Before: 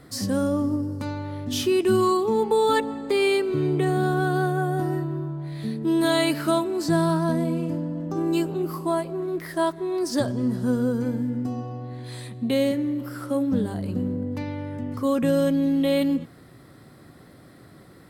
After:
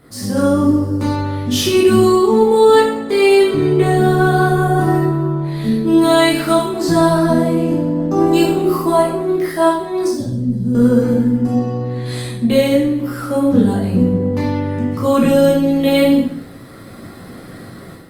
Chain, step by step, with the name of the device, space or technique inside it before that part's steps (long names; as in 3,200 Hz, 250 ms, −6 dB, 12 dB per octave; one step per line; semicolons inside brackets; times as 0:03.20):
0:10.08–0:10.75: drawn EQ curve 150 Hz 0 dB, 1,200 Hz −26 dB, 4,500 Hz −14 dB
speakerphone in a meeting room (convolution reverb RT60 0.60 s, pre-delay 11 ms, DRR −4.5 dB; automatic gain control gain up to 9 dB; Opus 32 kbit/s 48,000 Hz)